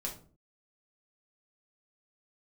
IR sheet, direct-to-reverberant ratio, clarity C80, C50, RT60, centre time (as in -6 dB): -2.0 dB, 14.5 dB, 9.0 dB, 0.45 s, 20 ms